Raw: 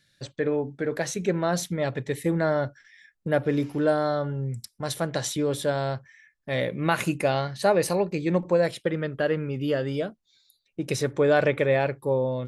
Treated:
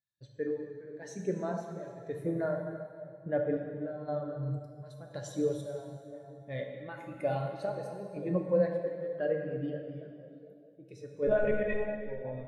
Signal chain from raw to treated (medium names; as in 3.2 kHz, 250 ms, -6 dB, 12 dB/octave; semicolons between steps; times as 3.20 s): on a send: feedback echo behind a low-pass 454 ms, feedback 35%, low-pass 1 kHz, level -12 dB; on the sum: square tremolo 0.98 Hz, depth 60%, duty 50%; reverb removal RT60 0.75 s; 11.27–11.91 s: monotone LPC vocoder at 8 kHz 210 Hz; plate-style reverb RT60 3.1 s, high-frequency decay 0.9×, DRR -1 dB; spectral contrast expander 1.5:1; trim -6.5 dB